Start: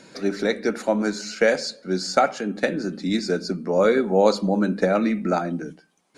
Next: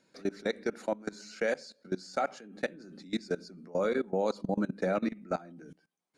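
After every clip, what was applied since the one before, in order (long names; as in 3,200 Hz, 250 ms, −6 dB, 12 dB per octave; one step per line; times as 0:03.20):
output level in coarse steps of 21 dB
level −7 dB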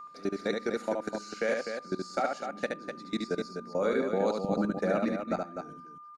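steady tone 1,200 Hz −42 dBFS
loudspeakers that aren't time-aligned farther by 25 metres −4 dB, 86 metres −7 dB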